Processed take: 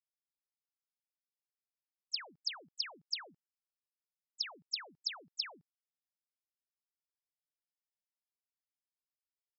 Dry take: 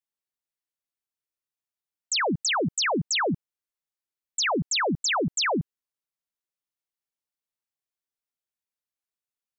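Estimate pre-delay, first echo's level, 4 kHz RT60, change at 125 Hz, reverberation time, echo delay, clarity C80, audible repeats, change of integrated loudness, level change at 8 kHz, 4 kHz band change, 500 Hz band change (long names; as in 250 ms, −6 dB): no reverb audible, no echo audible, no reverb audible, below −40 dB, no reverb audible, no echo audible, no reverb audible, no echo audible, −14.5 dB, −25.5 dB, −11.0 dB, −31.5 dB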